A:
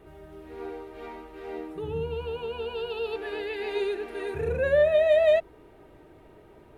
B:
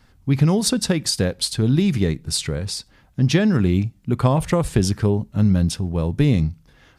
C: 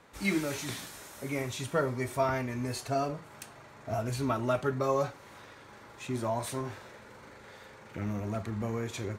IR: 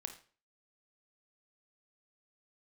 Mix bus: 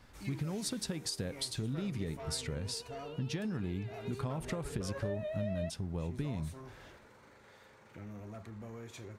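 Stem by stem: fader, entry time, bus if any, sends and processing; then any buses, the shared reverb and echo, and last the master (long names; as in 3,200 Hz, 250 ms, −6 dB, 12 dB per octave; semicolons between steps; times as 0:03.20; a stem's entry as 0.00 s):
−12.0 dB, 0.30 s, no send, no processing
−5.0 dB, 0.00 s, no send, downward compressor, threshold −21 dBFS, peak gain reduction 9.5 dB
−8.5 dB, 0.00 s, no send, soft clipping −28 dBFS, distortion −11 dB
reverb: not used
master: downward compressor 1.5 to 1, threshold −47 dBFS, peak gain reduction 8.5 dB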